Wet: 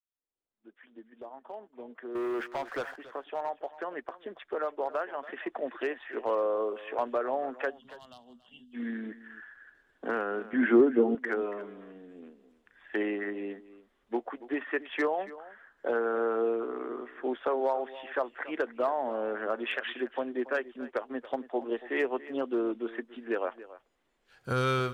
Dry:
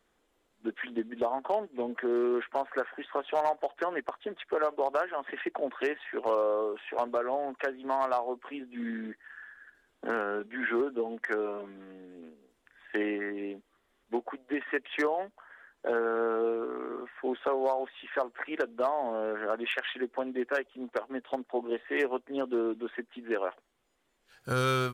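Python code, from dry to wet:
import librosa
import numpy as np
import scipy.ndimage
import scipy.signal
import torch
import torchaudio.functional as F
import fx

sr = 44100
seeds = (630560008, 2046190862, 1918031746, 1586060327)

y = fx.fade_in_head(x, sr, length_s=7.16)
y = fx.lowpass(y, sr, hz=4000.0, slope=6)
y = fx.leveller(y, sr, passes=3, at=(2.15, 2.96))
y = fx.spec_box(y, sr, start_s=7.7, length_s=1.04, low_hz=240.0, high_hz=2700.0, gain_db=-25)
y = fx.peak_eq(y, sr, hz=190.0, db=13.5, octaves=2.5, at=(10.53, 11.15))
y = y + 10.0 ** (-17.0 / 20.0) * np.pad(y, (int(281 * sr / 1000.0), 0))[:len(y)]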